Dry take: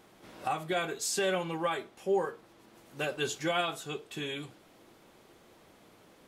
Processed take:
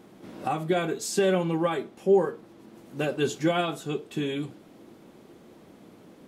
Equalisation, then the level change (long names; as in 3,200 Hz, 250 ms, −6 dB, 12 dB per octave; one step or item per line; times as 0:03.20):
parametric band 230 Hz +12.5 dB 2.3 octaves
0.0 dB